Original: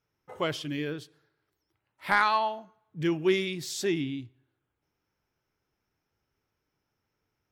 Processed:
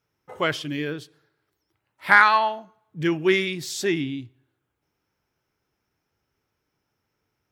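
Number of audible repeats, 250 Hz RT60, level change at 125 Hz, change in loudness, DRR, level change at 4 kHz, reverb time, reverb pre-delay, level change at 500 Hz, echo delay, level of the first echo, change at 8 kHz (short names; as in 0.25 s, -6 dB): none, none, +3.5 dB, +7.0 dB, none, +5.0 dB, none, none, +4.0 dB, none, none, +4.0 dB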